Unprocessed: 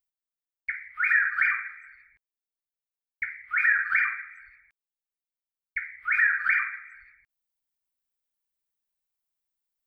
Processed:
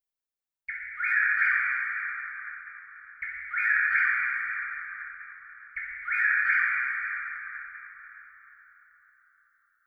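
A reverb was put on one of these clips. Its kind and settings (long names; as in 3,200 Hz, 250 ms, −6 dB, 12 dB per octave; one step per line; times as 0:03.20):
dense smooth reverb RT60 4.7 s, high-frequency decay 0.45×, DRR −4.5 dB
level −5.5 dB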